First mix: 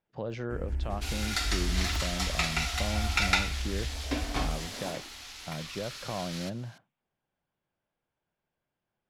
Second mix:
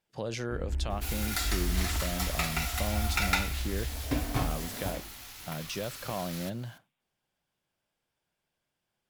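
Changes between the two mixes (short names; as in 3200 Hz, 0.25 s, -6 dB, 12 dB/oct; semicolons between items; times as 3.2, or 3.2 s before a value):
speech: remove Bessel low-pass 1300 Hz, order 2; second sound: remove BPF 230–4800 Hz; master: add high shelf 3700 Hz -11.5 dB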